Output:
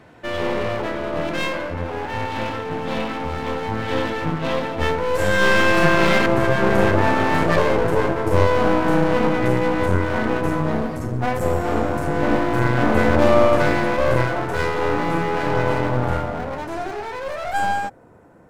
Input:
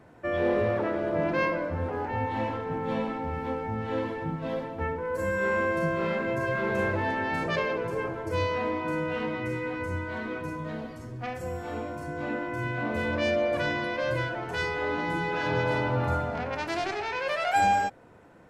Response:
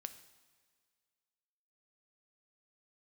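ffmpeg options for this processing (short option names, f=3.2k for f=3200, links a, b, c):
-af "asetnsamples=n=441:p=0,asendcmd='6.26 equalizer g -10',equalizer=f=3.3k:t=o:w=1.8:g=7.5,dynaudnorm=f=430:g=21:m=14dB,aeval=exprs='clip(val(0),-1,0.0168)':c=same,volume=5dB"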